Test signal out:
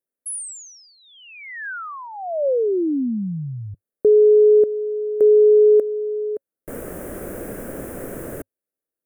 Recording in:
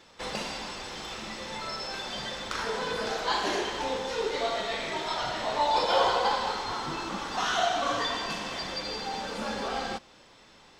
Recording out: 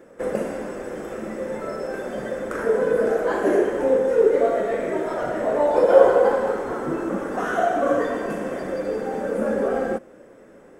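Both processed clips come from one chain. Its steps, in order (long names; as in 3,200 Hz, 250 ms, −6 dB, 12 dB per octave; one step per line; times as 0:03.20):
drawn EQ curve 100 Hz 0 dB, 260 Hz +11 dB, 550 Hz +14 dB, 890 Hz −4 dB, 1,600 Hz +3 dB, 4,200 Hz −23 dB, 9,700 Hz +4 dB
level +1.5 dB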